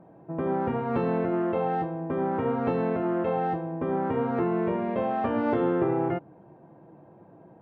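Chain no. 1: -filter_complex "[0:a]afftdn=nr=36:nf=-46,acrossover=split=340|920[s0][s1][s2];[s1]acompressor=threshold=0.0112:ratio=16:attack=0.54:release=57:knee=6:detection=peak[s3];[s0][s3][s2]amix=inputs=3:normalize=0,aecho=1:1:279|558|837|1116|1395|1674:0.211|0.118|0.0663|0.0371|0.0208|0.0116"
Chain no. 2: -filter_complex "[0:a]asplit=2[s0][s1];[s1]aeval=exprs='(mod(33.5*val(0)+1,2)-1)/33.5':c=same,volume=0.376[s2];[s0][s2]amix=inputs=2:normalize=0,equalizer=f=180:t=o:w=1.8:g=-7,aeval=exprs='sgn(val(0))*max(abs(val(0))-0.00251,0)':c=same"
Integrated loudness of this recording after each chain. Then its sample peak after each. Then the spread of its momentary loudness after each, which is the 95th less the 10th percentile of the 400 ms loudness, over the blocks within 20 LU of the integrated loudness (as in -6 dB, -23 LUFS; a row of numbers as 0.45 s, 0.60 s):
-31.0 LUFS, -30.5 LUFS; -16.5 dBFS, -15.0 dBFS; 8 LU, 5 LU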